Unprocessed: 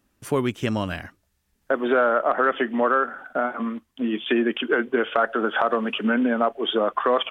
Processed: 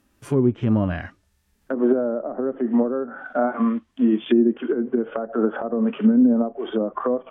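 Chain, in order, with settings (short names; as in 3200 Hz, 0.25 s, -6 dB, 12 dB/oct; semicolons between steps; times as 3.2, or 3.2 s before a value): treble ducked by the level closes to 330 Hz, closed at -17 dBFS; harmonic-percussive split percussive -13 dB; gain +7.5 dB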